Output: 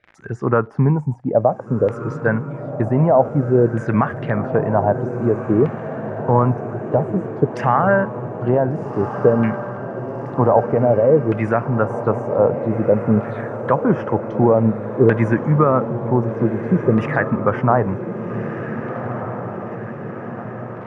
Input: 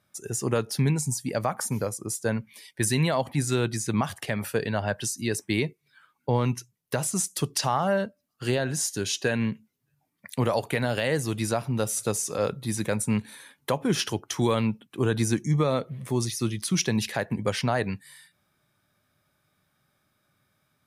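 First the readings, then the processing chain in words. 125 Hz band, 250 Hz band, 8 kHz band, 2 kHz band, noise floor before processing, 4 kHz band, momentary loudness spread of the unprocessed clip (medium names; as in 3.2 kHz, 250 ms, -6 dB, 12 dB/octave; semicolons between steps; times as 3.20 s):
+8.5 dB, +9.0 dB, under -25 dB, +5.0 dB, -74 dBFS, under -15 dB, 6 LU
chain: touch-sensitive phaser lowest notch 180 Hz, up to 4.1 kHz, full sweep at -25.5 dBFS; crackle 71 per s -38 dBFS; LFO low-pass saw down 0.53 Hz 450–2100 Hz; treble shelf 4.3 kHz -5 dB; echo that smears into a reverb 1550 ms, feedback 62%, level -9.5 dB; trim +7.5 dB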